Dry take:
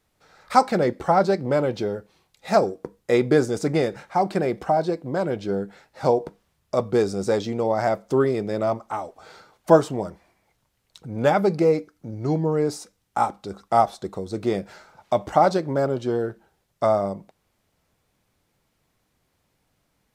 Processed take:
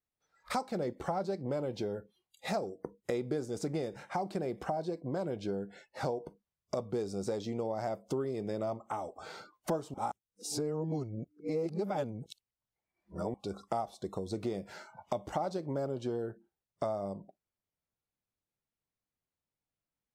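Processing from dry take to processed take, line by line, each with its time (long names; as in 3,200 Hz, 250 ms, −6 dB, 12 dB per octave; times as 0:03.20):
0:09.94–0:13.34: reverse
whole clip: noise reduction from a noise print of the clip's start 25 dB; dynamic equaliser 1,700 Hz, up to −7 dB, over −38 dBFS, Q 1; downward compressor 4 to 1, threshold −34 dBFS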